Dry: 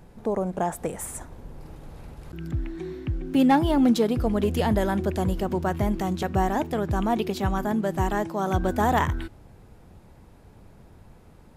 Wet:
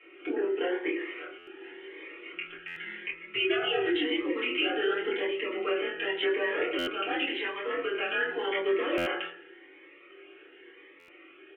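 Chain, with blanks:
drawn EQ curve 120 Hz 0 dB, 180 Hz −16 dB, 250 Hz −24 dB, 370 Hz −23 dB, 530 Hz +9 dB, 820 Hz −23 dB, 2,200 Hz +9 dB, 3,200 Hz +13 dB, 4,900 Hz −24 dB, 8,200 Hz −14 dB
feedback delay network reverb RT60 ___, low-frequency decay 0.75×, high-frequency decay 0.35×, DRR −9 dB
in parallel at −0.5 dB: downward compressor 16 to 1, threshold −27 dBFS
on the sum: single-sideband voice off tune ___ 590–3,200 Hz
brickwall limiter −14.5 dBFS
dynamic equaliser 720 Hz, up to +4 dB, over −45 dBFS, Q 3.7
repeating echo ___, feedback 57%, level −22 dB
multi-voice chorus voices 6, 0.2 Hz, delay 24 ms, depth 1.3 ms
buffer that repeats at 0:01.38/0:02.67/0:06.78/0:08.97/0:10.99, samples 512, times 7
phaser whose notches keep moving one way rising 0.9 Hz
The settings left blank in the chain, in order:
0.52 s, −160 Hz, 107 ms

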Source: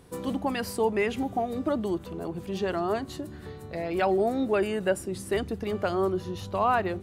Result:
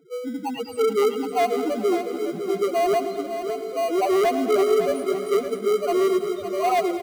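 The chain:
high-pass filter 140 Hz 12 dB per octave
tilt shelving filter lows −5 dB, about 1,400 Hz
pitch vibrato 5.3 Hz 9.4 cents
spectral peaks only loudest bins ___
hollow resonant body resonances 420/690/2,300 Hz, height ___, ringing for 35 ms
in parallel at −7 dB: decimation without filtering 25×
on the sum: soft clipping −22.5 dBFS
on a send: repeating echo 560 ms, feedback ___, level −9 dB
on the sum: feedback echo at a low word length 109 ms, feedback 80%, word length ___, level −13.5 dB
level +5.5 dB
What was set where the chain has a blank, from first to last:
1, 17 dB, 37%, 10 bits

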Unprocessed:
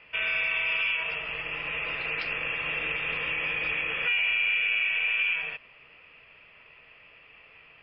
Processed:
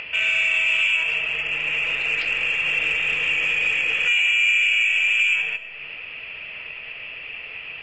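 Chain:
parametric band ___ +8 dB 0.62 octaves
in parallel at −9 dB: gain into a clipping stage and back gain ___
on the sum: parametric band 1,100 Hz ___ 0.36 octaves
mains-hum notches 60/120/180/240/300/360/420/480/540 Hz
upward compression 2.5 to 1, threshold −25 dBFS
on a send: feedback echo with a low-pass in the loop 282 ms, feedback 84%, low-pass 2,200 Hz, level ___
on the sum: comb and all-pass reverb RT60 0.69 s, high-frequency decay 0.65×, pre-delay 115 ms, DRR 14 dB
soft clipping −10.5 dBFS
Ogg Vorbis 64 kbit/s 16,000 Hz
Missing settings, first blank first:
2,700 Hz, 23.5 dB, −5 dB, −23.5 dB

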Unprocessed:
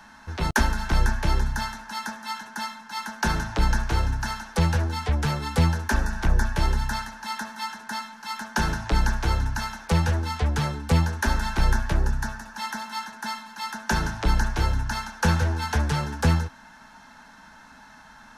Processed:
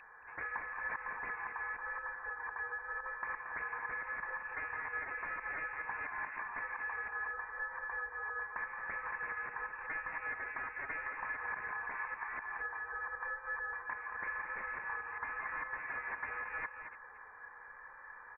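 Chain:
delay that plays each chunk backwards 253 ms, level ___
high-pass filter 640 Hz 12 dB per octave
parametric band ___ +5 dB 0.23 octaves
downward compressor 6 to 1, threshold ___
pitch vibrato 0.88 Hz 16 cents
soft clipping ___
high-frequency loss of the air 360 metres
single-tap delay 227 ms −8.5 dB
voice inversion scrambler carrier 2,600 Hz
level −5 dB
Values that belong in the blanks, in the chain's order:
−1 dB, 920 Hz, −30 dBFS, −18.5 dBFS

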